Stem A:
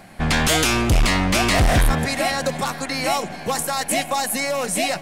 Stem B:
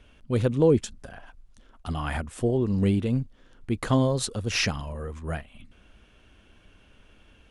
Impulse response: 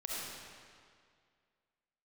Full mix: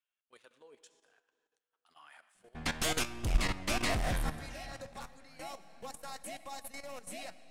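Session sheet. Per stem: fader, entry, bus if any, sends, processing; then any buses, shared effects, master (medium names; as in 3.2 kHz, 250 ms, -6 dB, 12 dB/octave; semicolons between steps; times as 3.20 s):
-2.0 dB, 2.35 s, send -11.5 dB, vibrato 4.7 Hz 6 cents; upward expansion 2.5:1, over -25 dBFS
-16.5 dB, 0.00 s, send -13.5 dB, high-pass 1.1 kHz 12 dB/octave; waveshaping leveller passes 1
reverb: on, RT60 2.1 s, pre-delay 25 ms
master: level held to a coarse grid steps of 13 dB; flange 0.31 Hz, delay 0.8 ms, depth 8.4 ms, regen +82%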